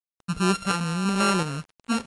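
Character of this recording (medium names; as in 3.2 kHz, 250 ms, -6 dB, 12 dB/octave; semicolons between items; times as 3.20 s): a buzz of ramps at a fixed pitch in blocks of 32 samples; tremolo saw up 1.4 Hz, depth 50%; a quantiser's noise floor 8-bit, dither none; MP3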